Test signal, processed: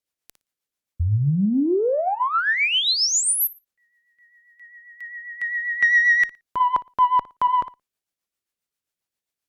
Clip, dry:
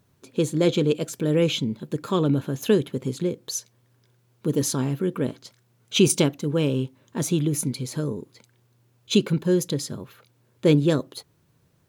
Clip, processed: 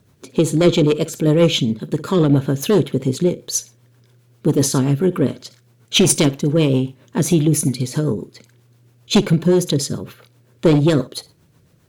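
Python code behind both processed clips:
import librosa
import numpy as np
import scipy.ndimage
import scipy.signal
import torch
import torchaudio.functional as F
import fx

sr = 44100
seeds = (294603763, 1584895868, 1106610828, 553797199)

y = fx.cheby_harmonics(x, sr, harmonics=(5, 8), levels_db=(-13, -37), full_scale_db=-6.0)
y = fx.room_flutter(y, sr, wall_m=9.9, rt60_s=0.23)
y = fx.rotary(y, sr, hz=7.5)
y = y * librosa.db_to_amplitude(3.5)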